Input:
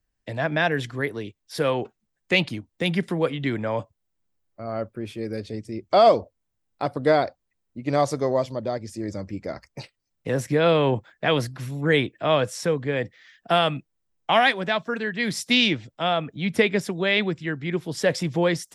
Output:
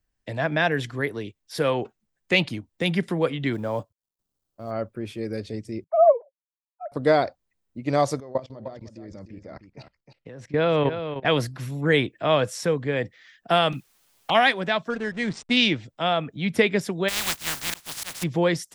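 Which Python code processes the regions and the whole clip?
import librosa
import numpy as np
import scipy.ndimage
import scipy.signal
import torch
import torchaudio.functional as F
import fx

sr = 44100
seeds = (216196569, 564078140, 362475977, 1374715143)

y = fx.chain(x, sr, fx.law_mismatch(coded='A'),
    fx.peak_eq(hz=2100.0, db=-11.5, octaves=0.88), at=(3.53, 4.71))
y = fx.chain(y, sr, fx.sine_speech(),
    fx.gaussian_blur(sigma=6.2), at=(5.84, 6.92))
y = fx.chain(y, sr, fx.level_steps(step_db=20),
    fx.air_absorb(metres=120.0),
    fx.echo_single(ms=305, db=-9.5), at=(8.2, 11.25))
y = fx.chain(y, sr, fx.quant_dither(seeds[0], bits=10, dither='triangular'),
    fx.env_flanger(rest_ms=11.4, full_db=-25.5), at=(13.72, 14.35))
y = fx.chain(y, sr, fx.high_shelf(hz=3300.0, db=-8.5),
    fx.backlash(play_db=-33.0),
    fx.brickwall_lowpass(high_hz=9200.0), at=(14.9, 15.57))
y = fx.spec_flatten(y, sr, power=0.15, at=(17.08, 18.22), fade=0.02)
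y = fx.auto_swell(y, sr, attack_ms=258.0, at=(17.08, 18.22), fade=0.02)
y = fx.peak_eq(y, sr, hz=410.0, db=-6.0, octaves=1.2, at=(17.08, 18.22), fade=0.02)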